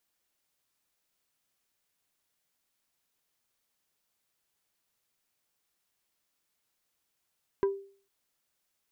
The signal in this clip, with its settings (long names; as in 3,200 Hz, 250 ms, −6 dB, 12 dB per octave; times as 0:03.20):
struck wood plate, lowest mode 394 Hz, decay 0.45 s, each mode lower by 9.5 dB, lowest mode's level −20.5 dB